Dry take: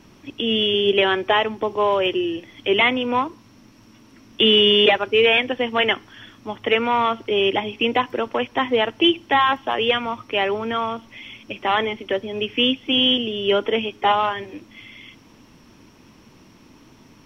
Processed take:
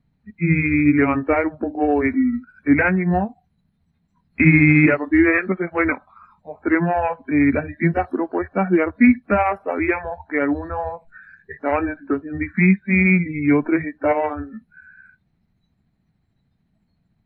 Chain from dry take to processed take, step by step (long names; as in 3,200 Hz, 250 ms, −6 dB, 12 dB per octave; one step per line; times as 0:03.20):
pitch shift by two crossfaded delay taps −5.5 semitones
noise reduction from a noise print of the clip's start 24 dB
bass and treble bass +12 dB, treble −6 dB